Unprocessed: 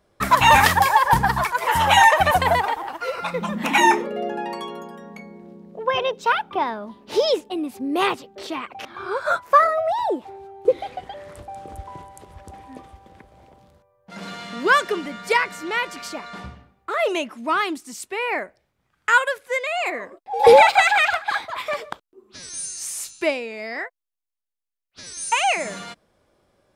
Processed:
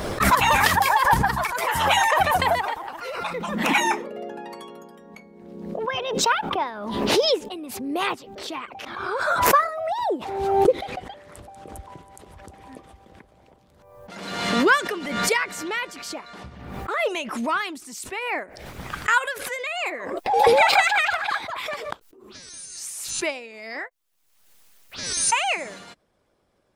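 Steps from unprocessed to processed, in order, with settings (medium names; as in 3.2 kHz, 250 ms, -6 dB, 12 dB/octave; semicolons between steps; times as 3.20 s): harmonic-percussive split harmonic -9 dB; swell ahead of each attack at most 44 dB/s; trim -1 dB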